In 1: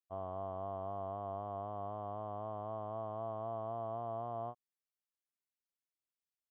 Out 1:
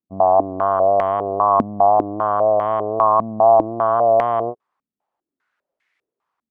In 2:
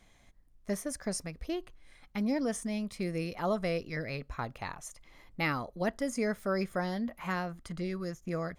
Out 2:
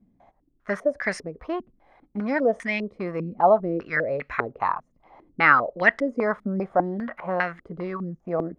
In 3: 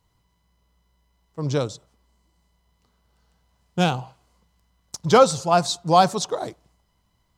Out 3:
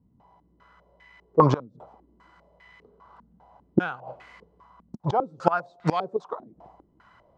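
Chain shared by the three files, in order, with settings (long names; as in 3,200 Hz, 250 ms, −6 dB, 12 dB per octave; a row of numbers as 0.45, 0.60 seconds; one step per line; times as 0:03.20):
gate with flip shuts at −17 dBFS, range −26 dB
spectral tilt +3.5 dB per octave
low-pass on a step sequencer 5 Hz 230–2,000 Hz
normalise the peak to −3 dBFS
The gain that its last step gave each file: +23.0, +9.5, +13.5 decibels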